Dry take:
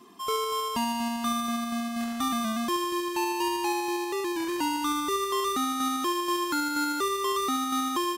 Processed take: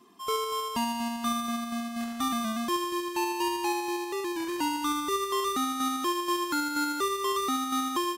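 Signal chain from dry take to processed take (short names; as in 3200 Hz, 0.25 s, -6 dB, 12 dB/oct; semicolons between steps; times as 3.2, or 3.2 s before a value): upward expander 1.5:1, over -36 dBFS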